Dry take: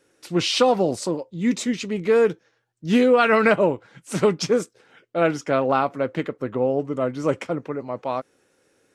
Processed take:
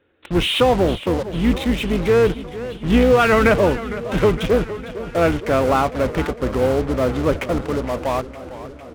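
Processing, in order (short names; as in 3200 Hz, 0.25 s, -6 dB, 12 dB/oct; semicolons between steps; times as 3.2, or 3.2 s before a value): octaver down 2 oct, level -3 dB; downsampling 8000 Hz; in parallel at -12 dB: fuzz box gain 41 dB, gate -38 dBFS; on the sum: warbling echo 0.458 s, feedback 68%, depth 147 cents, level -14.5 dB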